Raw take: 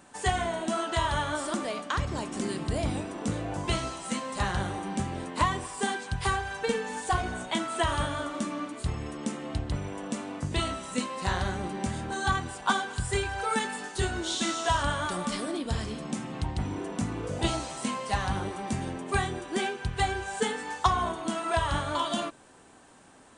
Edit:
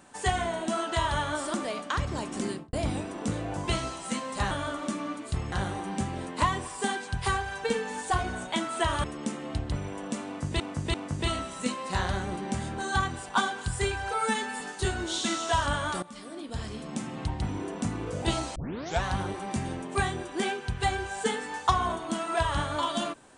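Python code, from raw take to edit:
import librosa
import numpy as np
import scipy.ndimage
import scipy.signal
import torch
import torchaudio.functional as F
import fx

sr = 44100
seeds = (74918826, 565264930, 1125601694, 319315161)

y = fx.studio_fade_out(x, sr, start_s=2.47, length_s=0.26)
y = fx.edit(y, sr, fx.move(start_s=8.03, length_s=1.01, to_s=4.51),
    fx.repeat(start_s=10.26, length_s=0.34, count=3),
    fx.stretch_span(start_s=13.46, length_s=0.31, factor=1.5),
    fx.fade_in_from(start_s=15.19, length_s=1.05, floor_db=-18.5),
    fx.tape_start(start_s=17.72, length_s=0.48), tone=tone)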